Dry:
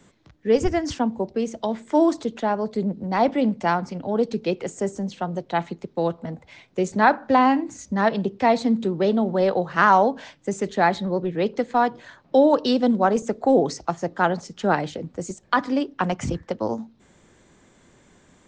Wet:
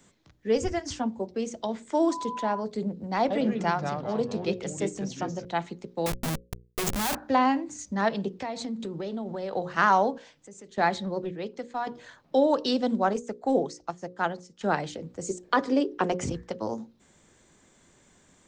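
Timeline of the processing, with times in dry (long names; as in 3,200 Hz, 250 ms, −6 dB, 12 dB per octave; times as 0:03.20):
0:00.58–0:01.36: notch comb filter 160 Hz
0:02.10–0:02.59: steady tone 1,000 Hz −27 dBFS
0:03.20–0:05.45: delay with pitch and tempo change per echo 102 ms, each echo −3 semitones, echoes 3, each echo −6 dB
0:06.06–0:07.15: comparator with hysteresis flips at −34.5 dBFS
0:08.37–0:09.53: downward compressor 12 to 1, threshold −23 dBFS
0:10.18–0:10.78: downward compressor 2 to 1, threshold −51 dBFS
0:11.31–0:11.87: clip gain −6.5 dB
0:13.13–0:14.61: expander for the loud parts, over −37 dBFS
0:15.26–0:16.31: parametric band 420 Hz +13.5 dB
whole clip: high-shelf EQ 5,500 Hz +10 dB; mains-hum notches 60/120/180/240/300/360/420/480/540 Hz; level −5.5 dB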